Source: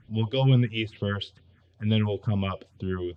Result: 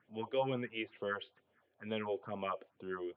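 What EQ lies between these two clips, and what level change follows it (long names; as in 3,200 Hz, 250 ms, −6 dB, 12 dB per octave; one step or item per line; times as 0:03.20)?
band-pass filter 520–2,400 Hz
high-frequency loss of the air 360 metres
−1.0 dB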